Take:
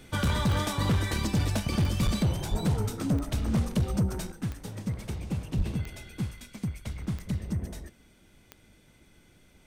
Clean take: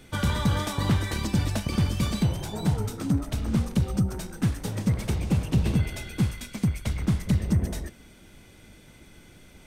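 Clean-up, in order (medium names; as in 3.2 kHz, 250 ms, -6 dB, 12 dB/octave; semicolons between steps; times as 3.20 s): clip repair -20.5 dBFS; de-click; de-plosive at 2.04/2.50/5.57 s; gain correction +8 dB, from 4.32 s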